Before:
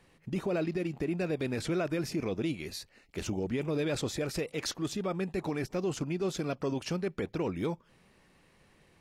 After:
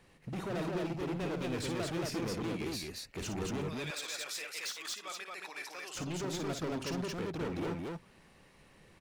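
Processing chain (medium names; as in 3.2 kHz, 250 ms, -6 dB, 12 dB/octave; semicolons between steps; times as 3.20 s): 3.68–5.95 s: high-pass 1.4 kHz 12 dB/octave; hard clipper -36 dBFS, distortion -6 dB; loudspeakers at several distances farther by 19 m -8 dB, 77 m -2 dB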